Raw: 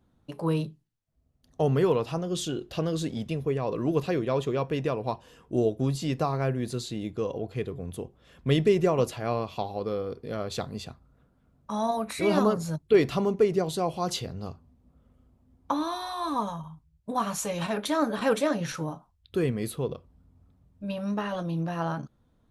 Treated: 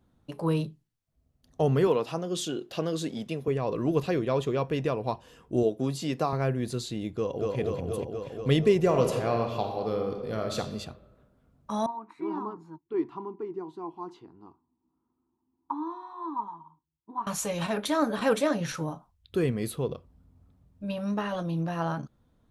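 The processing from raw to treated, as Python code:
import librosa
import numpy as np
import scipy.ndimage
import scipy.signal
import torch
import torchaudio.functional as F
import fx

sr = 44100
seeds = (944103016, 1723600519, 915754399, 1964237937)

y = fx.highpass(x, sr, hz=190.0, slope=12, at=(1.87, 3.48))
y = fx.highpass(y, sr, hz=170.0, slope=12, at=(5.63, 6.33))
y = fx.echo_throw(y, sr, start_s=7.13, length_s=0.43, ms=240, feedback_pct=80, wet_db=-1.0)
y = fx.reverb_throw(y, sr, start_s=8.82, length_s=1.76, rt60_s=1.3, drr_db=4.0)
y = fx.double_bandpass(y, sr, hz=560.0, octaves=1.5, at=(11.86, 17.27))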